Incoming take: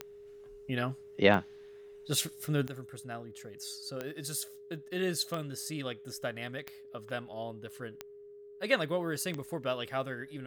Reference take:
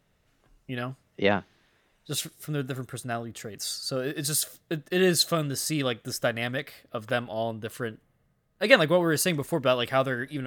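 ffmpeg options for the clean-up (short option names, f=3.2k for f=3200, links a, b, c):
-af "adeclick=t=4,bandreject=f=410:w=30,asetnsamples=n=441:p=0,asendcmd='2.67 volume volume 10dB',volume=0dB"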